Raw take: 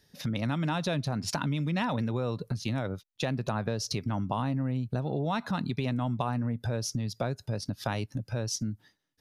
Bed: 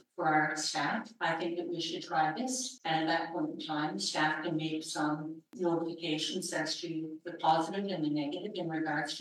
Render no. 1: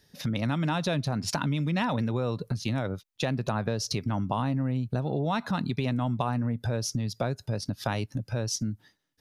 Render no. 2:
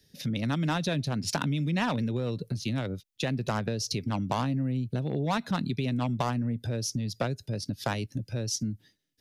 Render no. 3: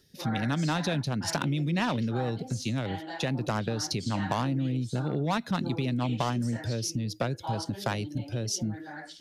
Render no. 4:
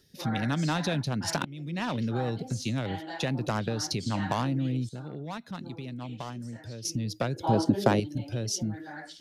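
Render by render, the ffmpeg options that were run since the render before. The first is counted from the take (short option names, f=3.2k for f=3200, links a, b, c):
-af "volume=2dB"
-filter_complex "[0:a]acrossover=split=110|610|1700[a][b][c][d];[a]asoftclip=type=tanh:threshold=-40dB[e];[c]acrusher=bits=4:mix=0:aa=0.5[f];[e][b][f][d]amix=inputs=4:normalize=0"
-filter_complex "[1:a]volume=-8.5dB[a];[0:a][a]amix=inputs=2:normalize=0"
-filter_complex "[0:a]asettb=1/sr,asplit=3[a][b][c];[a]atrim=end=7.364[d];[b]atrim=start=7.36:end=8,asetpts=PTS-STARTPTS,afade=t=in:d=0.004:c=qsin,afade=t=out:st=0.636:d=0.004:c=qsin,equalizer=f=330:w=0.58:g=13.5[e];[c]atrim=start=7.996[f];[d][e]acrossfade=d=0.004:c1=hsin:c2=qsin[g];[g][f]acrossfade=d=0.004:c1=qsin:c2=hsin,asplit=4[h][i][j][k];[h]atrim=end=1.45,asetpts=PTS-STARTPTS,afade=t=out:st=1.446:d=0.004:c=hsin:silence=0.0944061[l];[i]atrim=start=1.45:end=4.892,asetpts=PTS-STARTPTS,afade=t=in:d=0.63:silence=0.0944061[m];[j]atrim=start=4.888:end=6.852,asetpts=PTS-STARTPTS,volume=-9.5dB[n];[k]atrim=start=6.848[o];[l][m]concat=n=2:v=0:a=1[p];[p][n]acrossfade=d=0.004:c1=hsin:c2=hsin[q];[q][o]acrossfade=d=0.004:c1=hsin:c2=hsin"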